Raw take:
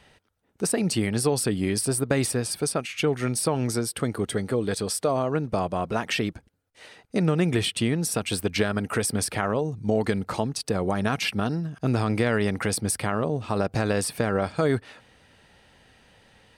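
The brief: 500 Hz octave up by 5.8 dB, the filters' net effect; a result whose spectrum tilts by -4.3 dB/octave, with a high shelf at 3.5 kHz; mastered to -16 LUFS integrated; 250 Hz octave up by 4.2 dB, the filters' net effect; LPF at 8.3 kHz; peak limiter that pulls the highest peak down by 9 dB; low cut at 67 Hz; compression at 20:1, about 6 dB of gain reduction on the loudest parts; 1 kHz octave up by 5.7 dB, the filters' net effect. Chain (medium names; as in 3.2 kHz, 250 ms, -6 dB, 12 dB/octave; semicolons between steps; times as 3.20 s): high-pass 67 Hz; low-pass 8.3 kHz; peaking EQ 250 Hz +4 dB; peaking EQ 500 Hz +4.5 dB; peaking EQ 1 kHz +5.5 dB; treble shelf 3.5 kHz +4 dB; compression 20:1, threshold -20 dBFS; trim +12 dB; peak limiter -3.5 dBFS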